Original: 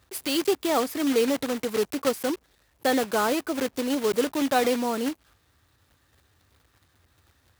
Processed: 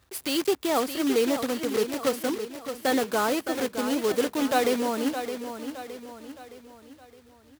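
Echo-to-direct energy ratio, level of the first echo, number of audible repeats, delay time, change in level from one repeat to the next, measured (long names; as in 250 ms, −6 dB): −8.0 dB, −9.0 dB, 4, 616 ms, −6.5 dB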